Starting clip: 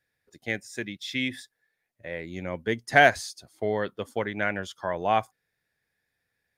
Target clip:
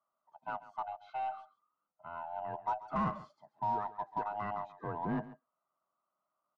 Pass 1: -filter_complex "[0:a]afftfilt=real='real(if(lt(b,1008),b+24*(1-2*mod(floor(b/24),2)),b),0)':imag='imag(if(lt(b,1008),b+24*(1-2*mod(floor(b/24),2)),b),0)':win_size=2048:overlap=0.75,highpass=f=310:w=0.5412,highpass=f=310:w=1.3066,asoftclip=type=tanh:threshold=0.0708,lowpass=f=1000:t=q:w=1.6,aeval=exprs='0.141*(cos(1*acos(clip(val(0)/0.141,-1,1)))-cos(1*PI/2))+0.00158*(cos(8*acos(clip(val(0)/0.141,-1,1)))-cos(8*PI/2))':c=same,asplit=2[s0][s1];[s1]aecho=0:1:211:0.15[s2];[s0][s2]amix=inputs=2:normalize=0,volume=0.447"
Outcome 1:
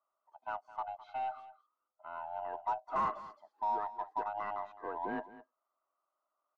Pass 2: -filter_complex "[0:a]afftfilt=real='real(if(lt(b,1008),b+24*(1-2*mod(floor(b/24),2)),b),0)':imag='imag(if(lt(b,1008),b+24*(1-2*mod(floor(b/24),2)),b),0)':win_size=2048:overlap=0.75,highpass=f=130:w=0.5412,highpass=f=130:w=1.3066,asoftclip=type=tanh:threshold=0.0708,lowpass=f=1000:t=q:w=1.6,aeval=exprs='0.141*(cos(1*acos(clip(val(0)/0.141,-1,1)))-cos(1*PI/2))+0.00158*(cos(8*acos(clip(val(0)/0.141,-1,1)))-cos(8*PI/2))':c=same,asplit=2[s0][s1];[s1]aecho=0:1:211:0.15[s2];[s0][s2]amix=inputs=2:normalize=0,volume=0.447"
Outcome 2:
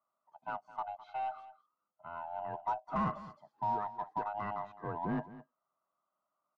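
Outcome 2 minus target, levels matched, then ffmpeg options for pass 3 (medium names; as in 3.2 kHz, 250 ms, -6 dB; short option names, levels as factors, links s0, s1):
echo 74 ms late
-filter_complex "[0:a]afftfilt=real='real(if(lt(b,1008),b+24*(1-2*mod(floor(b/24),2)),b),0)':imag='imag(if(lt(b,1008),b+24*(1-2*mod(floor(b/24),2)),b),0)':win_size=2048:overlap=0.75,highpass=f=130:w=0.5412,highpass=f=130:w=1.3066,asoftclip=type=tanh:threshold=0.0708,lowpass=f=1000:t=q:w=1.6,aeval=exprs='0.141*(cos(1*acos(clip(val(0)/0.141,-1,1)))-cos(1*PI/2))+0.00158*(cos(8*acos(clip(val(0)/0.141,-1,1)))-cos(8*PI/2))':c=same,asplit=2[s0][s1];[s1]aecho=0:1:137:0.15[s2];[s0][s2]amix=inputs=2:normalize=0,volume=0.447"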